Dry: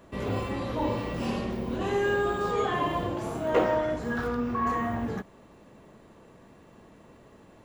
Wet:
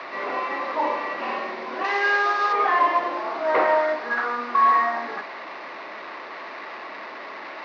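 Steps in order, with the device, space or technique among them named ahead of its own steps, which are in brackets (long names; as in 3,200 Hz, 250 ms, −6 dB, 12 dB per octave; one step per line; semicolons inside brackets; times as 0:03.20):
digital answering machine (band-pass filter 380–3,100 Hz; linear delta modulator 32 kbit/s, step −38 dBFS; loudspeaker in its box 420–4,000 Hz, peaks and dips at 470 Hz −8 dB, 1,100 Hz +4 dB, 2,000 Hz +6 dB, 3,200 Hz −8 dB)
0:01.84–0:02.53: RIAA equalisation recording
level +8.5 dB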